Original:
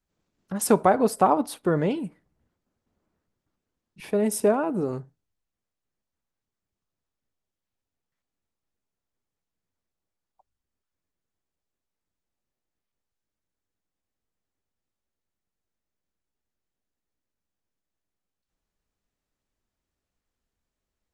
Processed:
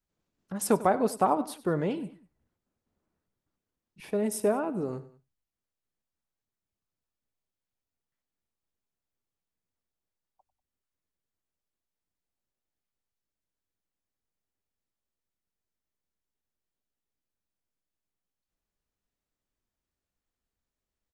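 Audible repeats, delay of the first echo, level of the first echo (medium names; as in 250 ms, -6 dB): 2, 96 ms, -17.5 dB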